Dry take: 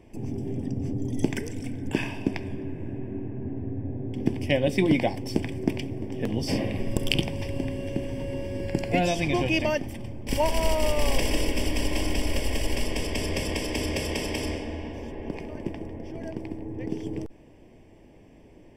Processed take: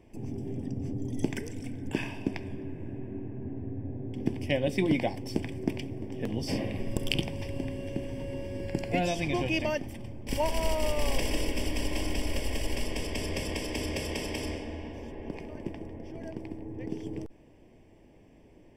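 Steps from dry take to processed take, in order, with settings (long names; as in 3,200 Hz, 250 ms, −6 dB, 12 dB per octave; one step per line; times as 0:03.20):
level −4.5 dB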